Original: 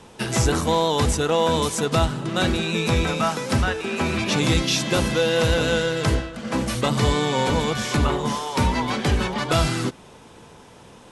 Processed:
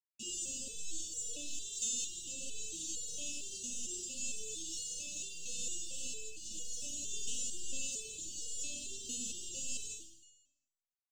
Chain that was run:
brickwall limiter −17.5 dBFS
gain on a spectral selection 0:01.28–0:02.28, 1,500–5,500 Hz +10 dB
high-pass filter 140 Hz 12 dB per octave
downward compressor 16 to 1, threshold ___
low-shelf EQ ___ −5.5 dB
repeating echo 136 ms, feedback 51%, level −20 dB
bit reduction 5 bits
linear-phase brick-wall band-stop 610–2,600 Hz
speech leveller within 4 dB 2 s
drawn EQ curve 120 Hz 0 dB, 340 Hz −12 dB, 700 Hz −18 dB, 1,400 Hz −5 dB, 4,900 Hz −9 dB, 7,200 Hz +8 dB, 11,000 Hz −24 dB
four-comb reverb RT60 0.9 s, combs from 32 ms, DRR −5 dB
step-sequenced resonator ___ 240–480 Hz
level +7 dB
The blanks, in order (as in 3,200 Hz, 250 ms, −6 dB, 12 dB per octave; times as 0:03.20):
−30 dBFS, 200 Hz, 4.4 Hz